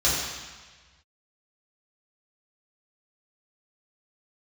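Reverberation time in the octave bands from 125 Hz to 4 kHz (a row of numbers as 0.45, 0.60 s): 1.7, 1.3, 1.3, 1.4, 1.5, 1.4 s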